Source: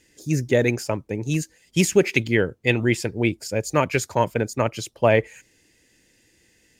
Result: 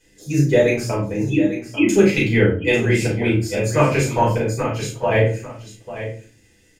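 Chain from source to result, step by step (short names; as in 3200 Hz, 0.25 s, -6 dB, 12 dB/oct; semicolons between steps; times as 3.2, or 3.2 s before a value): 1.29–1.89 sine-wave speech; 4.32–5.11 compressor, threshold -21 dBFS, peak gain reduction 9 dB; doubler 35 ms -5 dB; echo 0.845 s -12 dB; shoebox room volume 210 m³, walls furnished, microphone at 4.8 m; gain -7 dB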